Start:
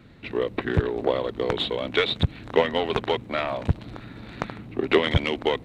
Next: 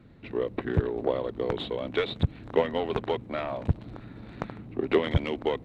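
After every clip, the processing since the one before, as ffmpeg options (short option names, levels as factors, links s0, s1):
-af "tiltshelf=f=1400:g=4.5,volume=0.447"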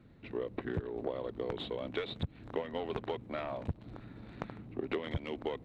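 -af "acompressor=threshold=0.0501:ratio=6,volume=0.531"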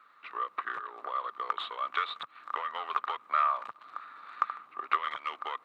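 -af "highpass=f=1200:t=q:w=15,volume=1.41"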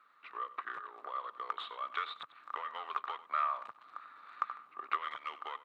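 -filter_complex "[0:a]asplit=2[s0][s1];[s1]adelay=93.29,volume=0.158,highshelf=f=4000:g=-2.1[s2];[s0][s2]amix=inputs=2:normalize=0,volume=0.501"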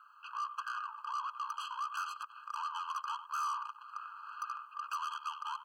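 -af "aeval=exprs='(tanh(112*val(0)+0.4)-tanh(0.4))/112':c=same,afftfilt=real='re*eq(mod(floor(b*sr/1024/820),2),1)':imag='im*eq(mod(floor(b*sr/1024/820),2),1)':win_size=1024:overlap=0.75,volume=2.66"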